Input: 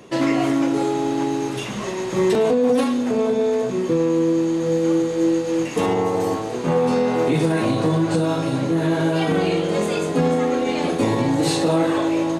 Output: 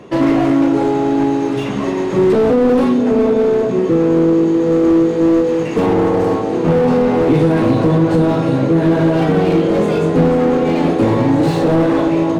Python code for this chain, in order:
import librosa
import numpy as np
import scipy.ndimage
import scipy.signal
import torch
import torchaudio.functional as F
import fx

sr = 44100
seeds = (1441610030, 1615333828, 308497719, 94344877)

p1 = fx.lowpass(x, sr, hz=1900.0, slope=6)
p2 = p1 + fx.echo_wet_lowpass(p1, sr, ms=650, feedback_pct=72, hz=500.0, wet_db=-11, dry=0)
p3 = fx.slew_limit(p2, sr, full_power_hz=63.0)
y = p3 * 10.0 ** (7.0 / 20.0)